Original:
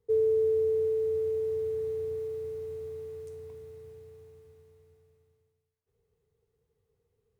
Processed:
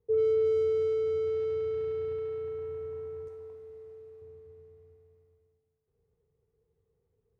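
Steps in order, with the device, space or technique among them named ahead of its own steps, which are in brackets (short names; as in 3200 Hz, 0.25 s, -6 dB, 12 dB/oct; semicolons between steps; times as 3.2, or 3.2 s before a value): 3.28–4.22 tone controls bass -11 dB, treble +2 dB; LPF 1000 Hz 6 dB/oct; saturated reverb return (on a send at -6.5 dB: reverb RT60 2.6 s, pre-delay 6 ms + soft clip -38 dBFS, distortion -5 dB)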